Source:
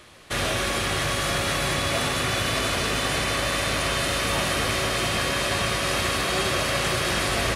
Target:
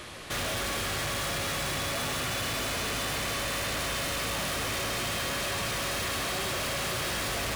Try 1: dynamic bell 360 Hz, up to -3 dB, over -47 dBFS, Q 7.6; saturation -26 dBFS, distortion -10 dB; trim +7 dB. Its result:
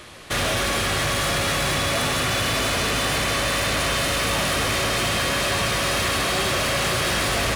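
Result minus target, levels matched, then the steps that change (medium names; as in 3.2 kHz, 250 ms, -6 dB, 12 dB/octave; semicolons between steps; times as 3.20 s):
saturation: distortion -6 dB
change: saturation -37.5 dBFS, distortion -5 dB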